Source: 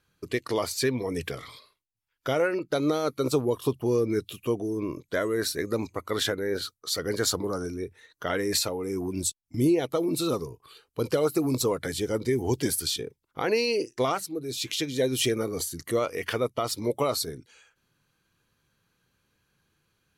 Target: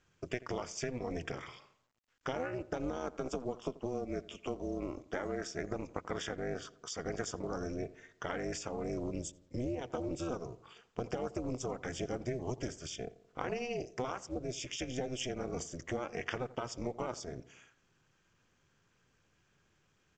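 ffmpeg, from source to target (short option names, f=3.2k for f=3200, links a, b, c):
-filter_complex "[0:a]asettb=1/sr,asplit=3[a][b][c];[a]atrim=end=2.974[d];[b]atrim=start=2.97:end=5.47,asetpts=PTS-STARTPTS,afade=t=in:d=0.004:c=qsin,afade=t=out:st=2.496:d=0.004:c=qsin,highpass=f=200:w=0.5412,highpass=f=200:w=1.3066[e];[c]atrim=start=5.466[f];[d][e]acrossfade=d=0.004:c1=hsin:c2=qsin[g];[g][f]acrossfade=d=0.004:c1=qsin:c2=hsin,acompressor=threshold=-31dB:ratio=10,tremolo=f=250:d=0.919,asuperstop=centerf=4100:order=4:qfactor=2.5,asplit=2[h][i];[i]adelay=86,lowpass=f=1.7k:p=1,volume=-18dB,asplit=2[j][k];[k]adelay=86,lowpass=f=1.7k:p=1,volume=0.52,asplit=2[l][m];[m]adelay=86,lowpass=f=1.7k:p=1,volume=0.52,asplit=2[n][o];[o]adelay=86,lowpass=f=1.7k:p=1,volume=0.52[p];[h][j][l][n][p]amix=inputs=5:normalize=0,volume=1dB" -ar 16000 -c:a pcm_mulaw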